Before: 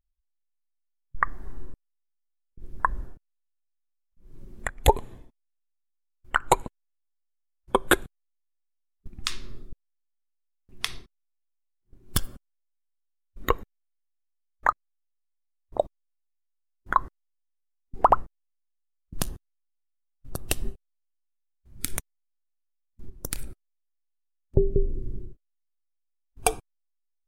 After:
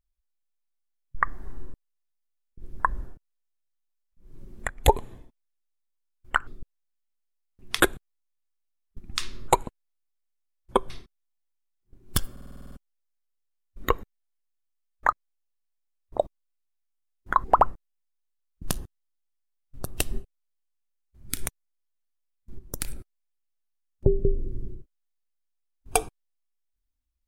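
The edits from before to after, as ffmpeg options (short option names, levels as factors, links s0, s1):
-filter_complex "[0:a]asplit=14[s0][s1][s2][s3][s4][s5][s6][s7][s8][s9][s10][s11][s12][s13];[s0]atrim=end=6.472[s14];[s1]atrim=start=9.568:end=10.902[s15];[s2]atrim=start=7.888:end=9.572[s16];[s3]atrim=start=6.468:end=7.892[s17];[s4]atrim=start=10.898:end=12.372[s18];[s5]atrim=start=12.318:end=12.372[s19];[s6]atrim=start=12.318:end=12.372[s20];[s7]atrim=start=12.318:end=12.372[s21];[s8]atrim=start=12.318:end=12.372[s22];[s9]atrim=start=12.318:end=12.372[s23];[s10]atrim=start=12.318:end=12.372[s24];[s11]atrim=start=12.318:end=12.372[s25];[s12]atrim=start=12.318:end=17.042[s26];[s13]atrim=start=17.948[s27];[s14][s15]acrossfade=d=0.004:c1=hsin:c2=hsin[s28];[s28][s16]acrossfade=d=0.004:c1=hsin:c2=hsin[s29];[s29][s17]acrossfade=d=0.004:c1=hsin:c2=hsin[s30];[s30][s18]acrossfade=d=0.004:c1=hsin:c2=hsin[s31];[s31][s19]acrossfade=d=0.004:c1=hsin:c2=hsin[s32];[s32][s20]acrossfade=d=0.004:c1=hsin:c2=hsin[s33];[s33][s21]acrossfade=d=0.004:c1=hsin:c2=hsin[s34];[s34][s22]acrossfade=d=0.004:c1=hsin:c2=hsin[s35];[s35][s23]acrossfade=d=0.004:c1=hsin:c2=hsin[s36];[s36][s24]acrossfade=d=0.004:c1=hsin:c2=hsin[s37];[s37][s25]acrossfade=d=0.004:c1=hsin:c2=hsin[s38];[s38][s26]acrossfade=d=0.004:c1=hsin:c2=hsin[s39];[s39][s27]acrossfade=d=0.004:c1=hsin:c2=hsin"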